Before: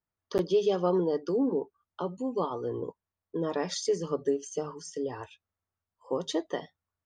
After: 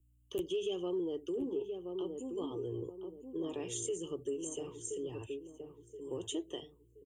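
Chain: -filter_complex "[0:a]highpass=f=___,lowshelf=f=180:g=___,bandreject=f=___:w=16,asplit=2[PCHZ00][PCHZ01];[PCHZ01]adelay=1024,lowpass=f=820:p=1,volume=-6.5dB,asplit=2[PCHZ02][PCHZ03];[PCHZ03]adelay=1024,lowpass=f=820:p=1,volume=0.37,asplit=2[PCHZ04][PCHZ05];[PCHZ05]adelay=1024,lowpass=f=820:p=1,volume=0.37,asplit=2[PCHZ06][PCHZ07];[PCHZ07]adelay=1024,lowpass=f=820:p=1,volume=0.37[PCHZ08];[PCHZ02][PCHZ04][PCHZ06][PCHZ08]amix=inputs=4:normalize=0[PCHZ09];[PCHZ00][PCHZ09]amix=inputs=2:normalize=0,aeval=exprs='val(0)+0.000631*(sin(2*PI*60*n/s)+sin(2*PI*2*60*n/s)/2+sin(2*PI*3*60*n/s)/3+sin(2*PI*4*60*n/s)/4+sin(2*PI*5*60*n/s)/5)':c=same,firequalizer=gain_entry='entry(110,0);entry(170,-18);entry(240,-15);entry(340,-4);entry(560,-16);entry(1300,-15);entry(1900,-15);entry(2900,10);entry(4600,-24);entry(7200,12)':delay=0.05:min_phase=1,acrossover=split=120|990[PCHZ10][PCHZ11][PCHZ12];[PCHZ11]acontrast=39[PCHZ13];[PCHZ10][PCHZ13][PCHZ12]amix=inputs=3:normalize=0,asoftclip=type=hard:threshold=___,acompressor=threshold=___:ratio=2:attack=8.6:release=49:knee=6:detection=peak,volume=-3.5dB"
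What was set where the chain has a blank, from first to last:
42, 3, 1400, -18.5dB, -33dB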